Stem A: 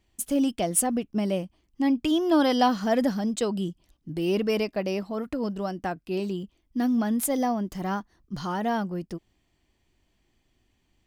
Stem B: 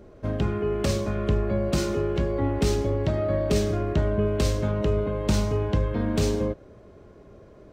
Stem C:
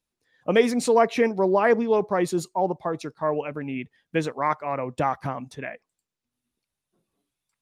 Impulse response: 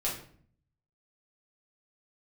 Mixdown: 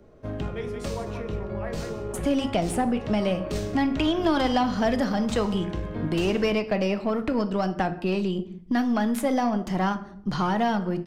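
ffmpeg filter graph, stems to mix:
-filter_complex "[0:a]aemphasis=mode=reproduction:type=50fm,acontrast=39,adelay=1950,volume=2dB,asplit=2[link_01][link_02];[link_02]volume=-12dB[link_03];[1:a]volume=-7.5dB,asplit=3[link_04][link_05][link_06];[link_05]volume=-8.5dB[link_07];[link_06]volume=-19.5dB[link_08];[2:a]acrossover=split=430[link_09][link_10];[link_09]aeval=exprs='val(0)*(1-0.5/2+0.5/2*cos(2*PI*5.7*n/s))':channel_layout=same[link_11];[link_10]aeval=exprs='val(0)*(1-0.5/2-0.5/2*cos(2*PI*5.7*n/s))':channel_layout=same[link_12];[link_11][link_12]amix=inputs=2:normalize=0,volume=-19dB,asplit=4[link_13][link_14][link_15][link_16];[link_14]volume=-6.5dB[link_17];[link_15]volume=-3.5dB[link_18];[link_16]apad=whole_len=340665[link_19];[link_04][link_19]sidechaincompress=threshold=-49dB:ratio=8:attack=16:release=215[link_20];[3:a]atrim=start_sample=2205[link_21];[link_03][link_07][link_17]amix=inputs=3:normalize=0[link_22];[link_22][link_21]afir=irnorm=-1:irlink=0[link_23];[link_08][link_18]amix=inputs=2:normalize=0,aecho=0:1:179:1[link_24];[link_01][link_20][link_13][link_23][link_24]amix=inputs=5:normalize=0,acrossover=split=260|670|2600[link_25][link_26][link_27][link_28];[link_25]acompressor=threshold=-28dB:ratio=4[link_29];[link_26]acompressor=threshold=-33dB:ratio=4[link_30];[link_27]acompressor=threshold=-27dB:ratio=4[link_31];[link_28]acompressor=threshold=-38dB:ratio=4[link_32];[link_29][link_30][link_31][link_32]amix=inputs=4:normalize=0,aeval=exprs='0.299*(cos(1*acos(clip(val(0)/0.299,-1,1)))-cos(1*PI/2))+0.00944*(cos(8*acos(clip(val(0)/0.299,-1,1)))-cos(8*PI/2))':channel_layout=same"

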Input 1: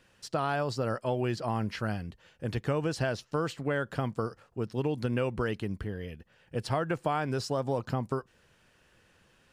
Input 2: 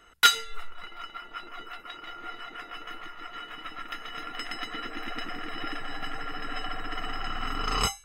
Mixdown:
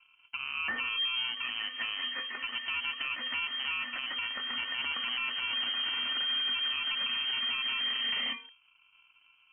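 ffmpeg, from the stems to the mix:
ffmpeg -i stem1.wav -i stem2.wav -filter_complex "[0:a]lowpass=frequency=520:width_type=q:width=4.9,acrusher=samples=33:mix=1:aa=0.000001,volume=-3dB[link_01];[1:a]lowshelf=frequency=330:gain=5,adelay=450,volume=2.5dB[link_02];[link_01][link_02]amix=inputs=2:normalize=0,lowpass=frequency=2700:width_type=q:width=0.5098,lowpass=frequency=2700:width_type=q:width=0.6013,lowpass=frequency=2700:width_type=q:width=0.9,lowpass=frequency=2700:width_type=q:width=2.563,afreqshift=-3200,alimiter=level_in=0.5dB:limit=-24dB:level=0:latency=1:release=133,volume=-0.5dB" out.wav

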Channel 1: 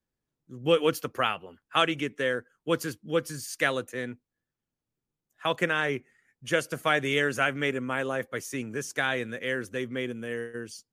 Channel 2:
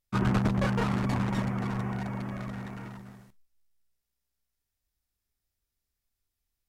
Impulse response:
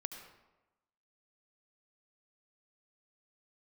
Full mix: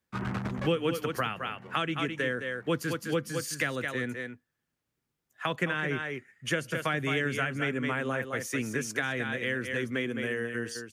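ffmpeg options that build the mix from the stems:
-filter_complex "[0:a]volume=2.5dB,asplit=3[link_01][link_02][link_03];[link_02]volume=-8.5dB[link_04];[1:a]volume=-8dB[link_05];[link_03]apad=whole_len=294818[link_06];[link_05][link_06]sidechaincompress=threshold=-32dB:ratio=8:attack=9.7:release=963[link_07];[link_04]aecho=0:1:212:1[link_08];[link_01][link_07][link_08]amix=inputs=3:normalize=0,highpass=49,equalizer=frequency=1800:width_type=o:width=1.6:gain=5.5,acrossover=split=270[link_09][link_10];[link_10]acompressor=threshold=-30dB:ratio=4[link_11];[link_09][link_11]amix=inputs=2:normalize=0"

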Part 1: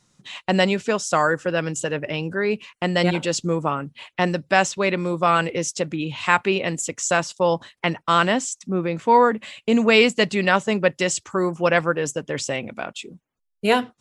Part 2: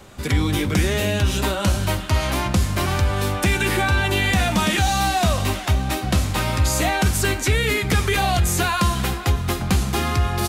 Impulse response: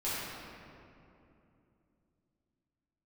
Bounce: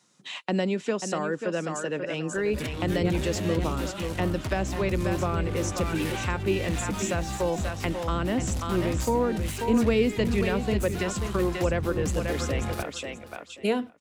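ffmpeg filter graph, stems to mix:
-filter_complex "[0:a]highpass=220,volume=-0.5dB,asplit=3[link_01][link_02][link_03];[link_02]volume=-9dB[link_04];[1:a]asoftclip=type=tanh:threshold=-24.5dB,adelay=2350,volume=-1.5dB,asplit=2[link_05][link_06];[link_06]volume=-20dB[link_07];[link_03]apad=whole_len=565836[link_08];[link_05][link_08]sidechaingate=range=-6dB:threshold=-37dB:ratio=16:detection=peak[link_09];[link_04][link_07]amix=inputs=2:normalize=0,aecho=0:1:536|1072|1608:1|0.17|0.0289[link_10];[link_01][link_09][link_10]amix=inputs=3:normalize=0,acrossover=split=400[link_11][link_12];[link_12]acompressor=threshold=-31dB:ratio=6[link_13];[link_11][link_13]amix=inputs=2:normalize=0"

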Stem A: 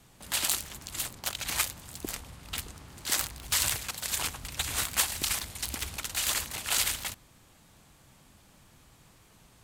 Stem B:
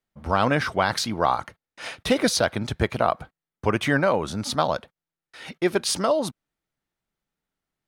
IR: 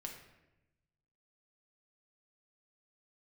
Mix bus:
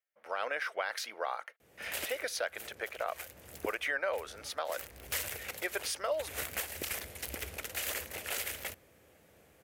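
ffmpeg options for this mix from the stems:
-filter_complex "[0:a]highpass=frequency=66:width=0.5412,highpass=frequency=66:width=1.3066,aeval=exprs='0.501*(cos(1*acos(clip(val(0)/0.501,-1,1)))-cos(1*PI/2))+0.0282*(cos(2*acos(clip(val(0)/0.501,-1,1)))-cos(2*PI/2))':channel_layout=same,adelay=1600,volume=0dB[link_01];[1:a]highpass=1100,volume=-2.5dB,asplit=2[link_02][link_03];[link_03]apad=whole_len=495606[link_04];[link_01][link_04]sidechaincompress=threshold=-38dB:ratio=10:attack=27:release=370[link_05];[link_05][link_02]amix=inputs=2:normalize=0,equalizer=frequency=125:width_type=o:width=1:gain=-9,equalizer=frequency=250:width_type=o:width=1:gain=-5,equalizer=frequency=500:width_type=o:width=1:gain=10,equalizer=frequency=1000:width_type=o:width=1:gain=-10,equalizer=frequency=2000:width_type=o:width=1:gain=3,equalizer=frequency=4000:width_type=o:width=1:gain=-9,equalizer=frequency=8000:width_type=o:width=1:gain=-8,alimiter=limit=-22.5dB:level=0:latency=1:release=210"

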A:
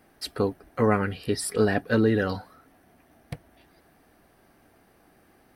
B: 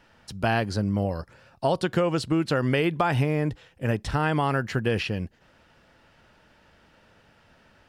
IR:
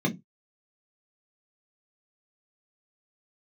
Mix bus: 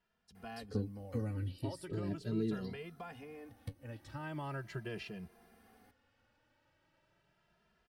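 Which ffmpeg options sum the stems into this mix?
-filter_complex "[0:a]acrossover=split=400|3400[link_01][link_02][link_03];[link_01]acompressor=threshold=-29dB:ratio=4[link_04];[link_02]acompressor=threshold=-58dB:ratio=4[link_05];[link_03]acompressor=threshold=-55dB:ratio=4[link_06];[link_04][link_05][link_06]amix=inputs=3:normalize=0,flanger=delay=8.6:depth=2.7:regen=49:speed=0.4:shape=sinusoidal,adelay=350,volume=2dB[link_07];[1:a]volume=-13.5dB,afade=type=in:start_time=3.93:duration=0.72:silence=0.446684[link_08];[link_07][link_08]amix=inputs=2:normalize=0,asplit=2[link_09][link_10];[link_10]adelay=2.5,afreqshift=0.39[link_11];[link_09][link_11]amix=inputs=2:normalize=1"

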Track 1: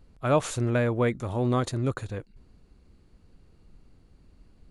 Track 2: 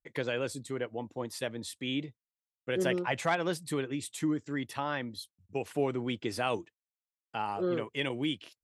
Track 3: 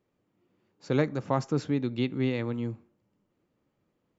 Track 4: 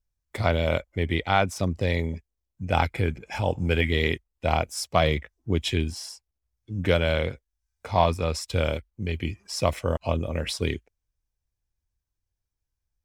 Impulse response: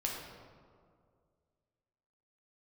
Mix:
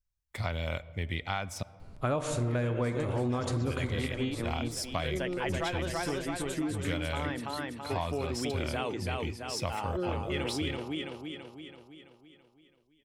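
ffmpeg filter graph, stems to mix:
-filter_complex "[0:a]adelay=1800,volume=2dB,asplit=3[link_01][link_02][link_03];[link_02]volume=-6dB[link_04];[link_03]volume=-19.5dB[link_05];[1:a]adelay=2350,volume=-0.5dB,asplit=2[link_06][link_07];[link_07]volume=-3.5dB[link_08];[2:a]tremolo=f=4.9:d=0.93,adelay=2000,volume=1dB[link_09];[3:a]equalizer=frequency=390:width_type=o:width=1.7:gain=-8,volume=-5dB,asplit=3[link_10][link_11][link_12];[link_10]atrim=end=1.63,asetpts=PTS-STARTPTS,afade=type=out:start_time=1.626:duration=0.004:curve=hsin[link_13];[link_11]atrim=start=1.63:end=3.13,asetpts=PTS-STARTPTS,volume=0[link_14];[link_12]atrim=start=3.13,asetpts=PTS-STARTPTS,afade=type=in:duration=0.004:curve=hsin[link_15];[link_13][link_14][link_15]concat=n=3:v=0:a=1,asplit=2[link_16][link_17];[link_17]volume=-20dB[link_18];[4:a]atrim=start_sample=2205[link_19];[link_04][link_18]amix=inputs=2:normalize=0[link_20];[link_20][link_19]afir=irnorm=-1:irlink=0[link_21];[link_05][link_08]amix=inputs=2:normalize=0,aecho=0:1:332|664|996|1328|1660|1992|2324|2656:1|0.53|0.281|0.149|0.0789|0.0418|0.0222|0.0117[link_22];[link_01][link_06][link_09][link_16][link_21][link_22]amix=inputs=6:normalize=0,acompressor=threshold=-28dB:ratio=6"

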